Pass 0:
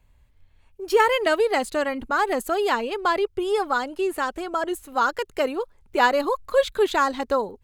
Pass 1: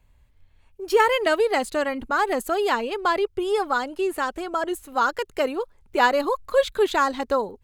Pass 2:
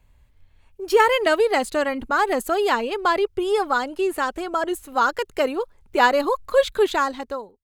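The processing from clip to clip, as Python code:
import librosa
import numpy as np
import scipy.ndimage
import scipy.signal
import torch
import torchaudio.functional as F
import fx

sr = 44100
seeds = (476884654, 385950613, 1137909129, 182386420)

y1 = x
y2 = fx.fade_out_tail(y1, sr, length_s=0.84)
y2 = F.gain(torch.from_numpy(y2), 2.0).numpy()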